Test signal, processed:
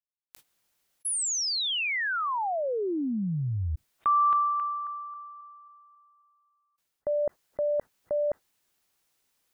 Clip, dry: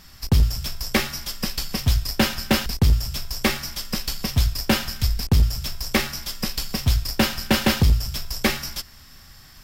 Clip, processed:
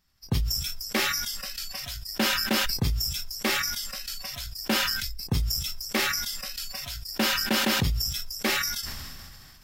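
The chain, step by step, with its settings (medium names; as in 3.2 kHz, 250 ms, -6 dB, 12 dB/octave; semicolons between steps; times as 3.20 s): spectral noise reduction 18 dB; decay stretcher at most 26 dB/s; trim -7 dB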